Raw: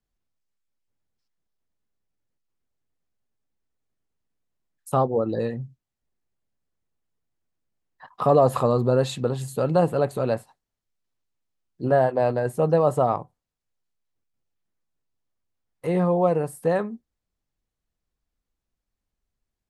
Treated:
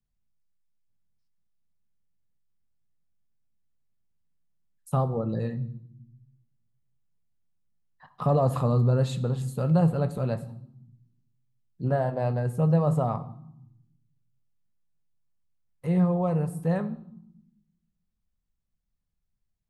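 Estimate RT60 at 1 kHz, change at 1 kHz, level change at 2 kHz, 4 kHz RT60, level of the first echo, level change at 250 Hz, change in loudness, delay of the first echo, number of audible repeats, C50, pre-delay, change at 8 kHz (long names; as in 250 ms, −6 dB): 0.75 s, −7.5 dB, −7.5 dB, 0.60 s, no echo audible, 0.0 dB, −3.5 dB, no echo audible, no echo audible, 15.5 dB, 5 ms, can't be measured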